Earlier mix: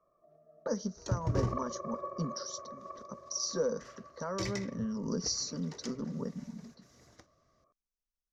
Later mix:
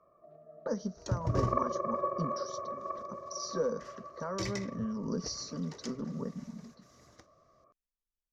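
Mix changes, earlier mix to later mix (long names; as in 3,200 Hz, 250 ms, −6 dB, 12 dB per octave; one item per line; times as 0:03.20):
speech: add high-frequency loss of the air 110 metres
first sound +7.5 dB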